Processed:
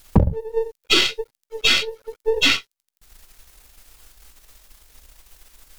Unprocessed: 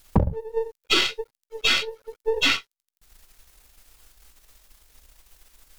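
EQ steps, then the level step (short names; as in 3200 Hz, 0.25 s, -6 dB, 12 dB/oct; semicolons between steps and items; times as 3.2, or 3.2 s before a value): dynamic EQ 1100 Hz, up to -5 dB, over -40 dBFS, Q 0.81; +5.0 dB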